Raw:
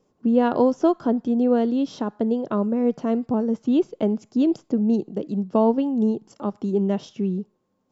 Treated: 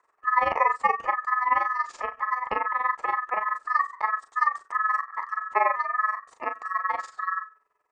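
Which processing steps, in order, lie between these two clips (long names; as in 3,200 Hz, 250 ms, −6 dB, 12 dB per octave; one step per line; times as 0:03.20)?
mains-hum notches 50/100/150/200/250/300/350/400 Hz
in parallel at −1 dB: downward compressor, threshold −26 dBFS, peak gain reduction 12.5 dB
on the sum: ring modulation 1,500 Hz
octave-band graphic EQ 125/500/1,000/2,000/4,000 Hz −8/+7/+5/−6/−6 dB
amplitude modulation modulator 21 Hz, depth 70%
double-tracking delay 38 ms −9 dB
level −1.5 dB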